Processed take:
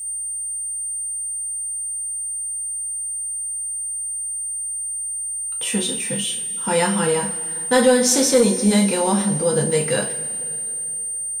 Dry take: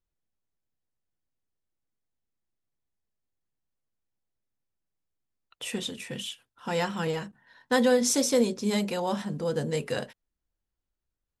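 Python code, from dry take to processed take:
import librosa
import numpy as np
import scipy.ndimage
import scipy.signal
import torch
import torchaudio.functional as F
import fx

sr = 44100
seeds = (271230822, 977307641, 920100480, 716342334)

y = x + 10.0 ** (-36.0 / 20.0) * np.sin(2.0 * np.pi * 8800.0 * np.arange(len(x)) / sr)
y = fx.rev_double_slope(y, sr, seeds[0], early_s=0.3, late_s=3.1, knee_db=-20, drr_db=0.5)
y = fx.leveller(y, sr, passes=1)
y = F.gain(torch.from_numpy(y), 2.5).numpy()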